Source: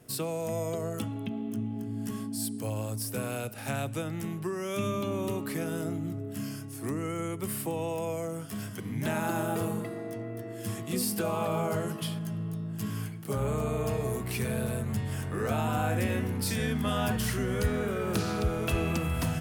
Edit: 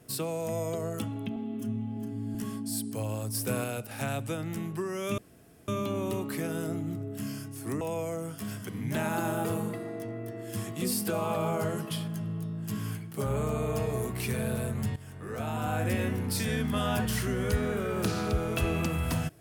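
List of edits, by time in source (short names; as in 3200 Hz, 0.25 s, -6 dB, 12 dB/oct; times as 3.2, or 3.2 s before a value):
1.36–2.02 stretch 1.5×
3.02–3.31 gain +3 dB
4.85 insert room tone 0.50 s
6.98–7.92 cut
15.07–16.05 fade in, from -15.5 dB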